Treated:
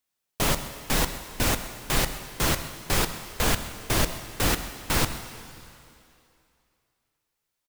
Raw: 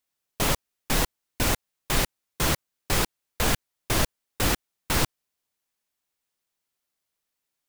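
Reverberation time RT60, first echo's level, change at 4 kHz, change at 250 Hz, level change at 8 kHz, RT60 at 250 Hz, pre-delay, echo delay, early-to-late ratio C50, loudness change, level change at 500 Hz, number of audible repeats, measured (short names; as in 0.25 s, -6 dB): 2.6 s, -17.5 dB, +0.5 dB, +0.5 dB, +0.5 dB, 2.5 s, 11 ms, 0.13 s, 9.5 dB, +0.5 dB, +0.5 dB, 1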